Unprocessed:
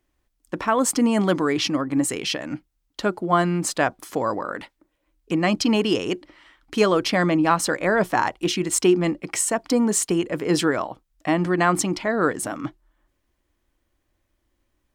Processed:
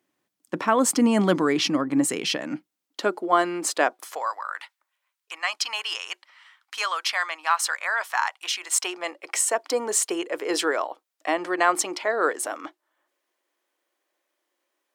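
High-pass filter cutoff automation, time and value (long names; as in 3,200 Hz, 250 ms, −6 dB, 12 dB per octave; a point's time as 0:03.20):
high-pass filter 24 dB per octave
0:02.35 150 Hz
0:03.27 320 Hz
0:03.88 320 Hz
0:04.34 940 Hz
0:08.34 940 Hz
0:09.58 400 Hz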